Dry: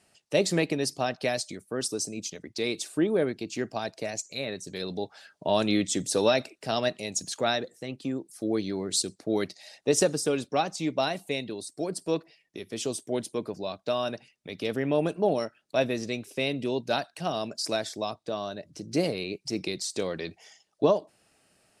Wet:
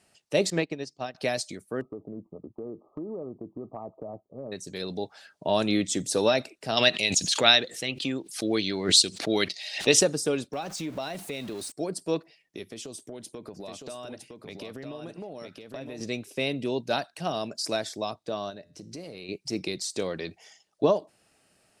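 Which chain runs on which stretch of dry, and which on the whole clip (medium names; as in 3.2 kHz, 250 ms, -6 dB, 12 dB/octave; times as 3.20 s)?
0.50–1.15 s: low-pass 7.1 kHz 24 dB/octave + upward expansion 2.5:1, over -35 dBFS
1.81–4.52 s: brick-wall FIR low-pass 1.3 kHz + compression, threshold -33 dBFS
6.77–10.01 s: peaking EQ 3.1 kHz +14.5 dB 1.8 oct + swell ahead of each attack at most 120 dB/s
10.53–11.72 s: jump at every zero crossing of -39.5 dBFS + compression 3:1, threshold -31 dBFS
12.64–16.01 s: compression 16:1, threshold -35 dBFS + delay 960 ms -5 dB
18.50–19.29 s: compression, threshold -33 dBFS + feedback comb 86 Hz, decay 0.6 s, mix 40%
whole clip: none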